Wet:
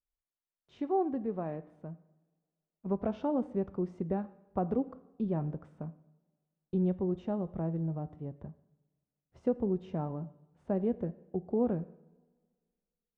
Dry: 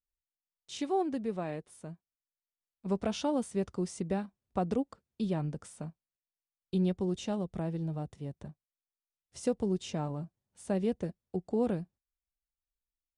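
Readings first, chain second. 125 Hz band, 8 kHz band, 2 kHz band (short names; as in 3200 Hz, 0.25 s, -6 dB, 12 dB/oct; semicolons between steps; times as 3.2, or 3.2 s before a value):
0.0 dB, under -30 dB, n/a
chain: LPF 1200 Hz 12 dB/oct; two-slope reverb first 0.79 s, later 2 s, DRR 14 dB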